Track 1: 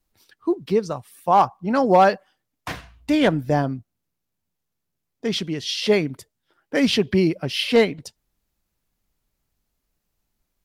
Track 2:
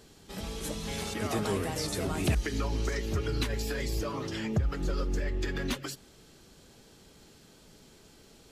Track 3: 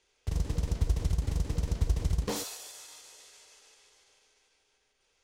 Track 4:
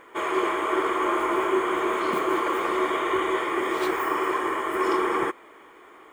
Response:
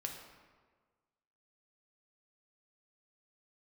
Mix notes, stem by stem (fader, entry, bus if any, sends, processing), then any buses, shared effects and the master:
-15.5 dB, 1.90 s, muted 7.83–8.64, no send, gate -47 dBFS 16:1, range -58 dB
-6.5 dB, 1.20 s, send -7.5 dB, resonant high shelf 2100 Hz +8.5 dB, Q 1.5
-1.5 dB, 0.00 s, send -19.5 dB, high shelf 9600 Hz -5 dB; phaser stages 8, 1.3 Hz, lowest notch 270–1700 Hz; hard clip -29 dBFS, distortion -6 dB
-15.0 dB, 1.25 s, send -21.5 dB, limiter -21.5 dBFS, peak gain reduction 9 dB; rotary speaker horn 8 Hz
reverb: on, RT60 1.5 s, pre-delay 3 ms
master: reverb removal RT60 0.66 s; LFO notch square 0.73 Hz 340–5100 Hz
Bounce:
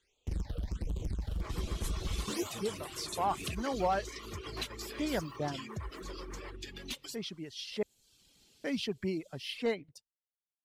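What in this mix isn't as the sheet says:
stem 2 -6.5 dB -> -15.0 dB; master: missing LFO notch square 0.73 Hz 340–5100 Hz

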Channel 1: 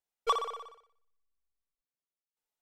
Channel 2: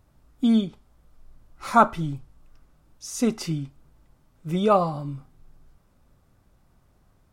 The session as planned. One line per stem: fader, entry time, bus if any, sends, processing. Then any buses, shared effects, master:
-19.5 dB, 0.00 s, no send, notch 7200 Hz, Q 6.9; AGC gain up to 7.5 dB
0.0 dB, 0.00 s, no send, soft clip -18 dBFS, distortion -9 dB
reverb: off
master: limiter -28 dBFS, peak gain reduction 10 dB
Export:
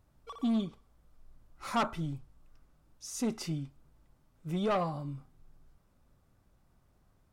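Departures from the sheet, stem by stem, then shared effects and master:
stem 2 0.0 dB -> -6.5 dB; master: missing limiter -28 dBFS, peak gain reduction 10 dB

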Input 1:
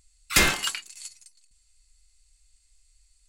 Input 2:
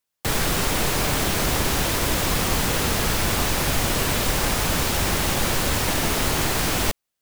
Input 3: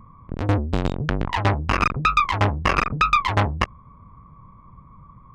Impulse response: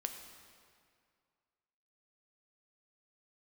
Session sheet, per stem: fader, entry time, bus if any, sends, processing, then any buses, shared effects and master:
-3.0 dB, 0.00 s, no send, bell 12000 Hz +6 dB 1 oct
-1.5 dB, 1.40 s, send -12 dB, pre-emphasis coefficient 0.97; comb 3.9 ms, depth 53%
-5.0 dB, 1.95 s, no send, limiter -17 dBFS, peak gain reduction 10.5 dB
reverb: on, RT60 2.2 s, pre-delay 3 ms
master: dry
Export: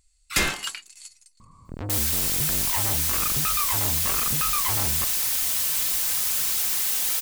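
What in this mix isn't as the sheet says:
stem 1: missing bell 12000 Hz +6 dB 1 oct; stem 2: entry 1.40 s -> 1.65 s; stem 3: entry 1.95 s -> 1.40 s

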